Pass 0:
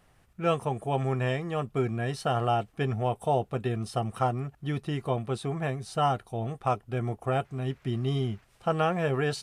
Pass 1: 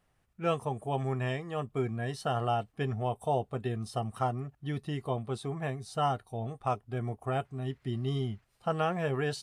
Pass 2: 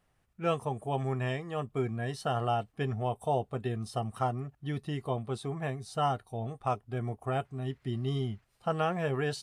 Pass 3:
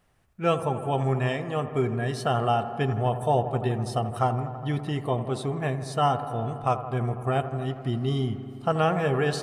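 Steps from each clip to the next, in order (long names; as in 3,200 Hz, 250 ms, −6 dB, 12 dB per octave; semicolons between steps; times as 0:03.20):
noise reduction from a noise print of the clip's start 7 dB; level −3.5 dB
no processing that can be heard
delay with a low-pass on its return 82 ms, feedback 81%, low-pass 1,700 Hz, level −12 dB; level +6 dB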